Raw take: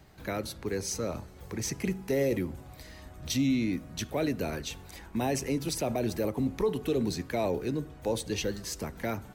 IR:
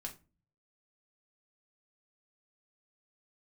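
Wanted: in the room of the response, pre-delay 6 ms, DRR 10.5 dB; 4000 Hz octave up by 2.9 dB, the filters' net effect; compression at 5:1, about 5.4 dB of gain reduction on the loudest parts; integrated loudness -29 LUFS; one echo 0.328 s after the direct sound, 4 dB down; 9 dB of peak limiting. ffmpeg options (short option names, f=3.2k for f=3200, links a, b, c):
-filter_complex "[0:a]equalizer=f=4k:t=o:g=3.5,acompressor=threshold=-29dB:ratio=5,alimiter=level_in=4dB:limit=-24dB:level=0:latency=1,volume=-4dB,aecho=1:1:328:0.631,asplit=2[a][b];[1:a]atrim=start_sample=2205,adelay=6[c];[b][c]afir=irnorm=-1:irlink=0,volume=-8dB[d];[a][d]amix=inputs=2:normalize=0,volume=7.5dB"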